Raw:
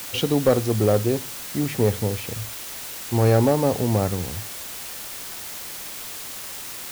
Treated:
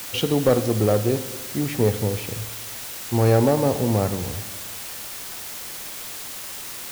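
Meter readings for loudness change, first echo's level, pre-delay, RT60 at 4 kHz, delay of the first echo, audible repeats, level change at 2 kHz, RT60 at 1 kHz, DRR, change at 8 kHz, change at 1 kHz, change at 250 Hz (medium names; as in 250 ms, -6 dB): 0.0 dB, no echo, 5 ms, 1.4 s, no echo, no echo, 0.0 dB, 1.5 s, 11.0 dB, +0.5 dB, +0.5 dB, +0.5 dB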